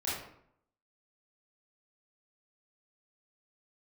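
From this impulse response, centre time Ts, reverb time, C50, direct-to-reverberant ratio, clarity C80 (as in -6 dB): 60 ms, 0.70 s, 0.0 dB, -9.0 dB, 5.0 dB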